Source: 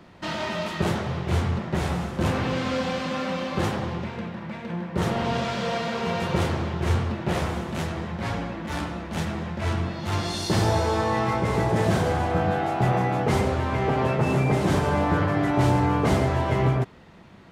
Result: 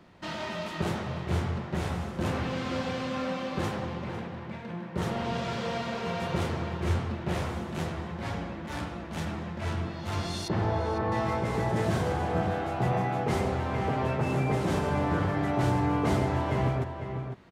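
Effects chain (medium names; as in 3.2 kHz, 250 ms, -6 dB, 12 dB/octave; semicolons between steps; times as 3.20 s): 10.48–11.12 s: low-pass 2 kHz 12 dB/octave; echo from a far wall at 86 m, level -7 dB; trim -6 dB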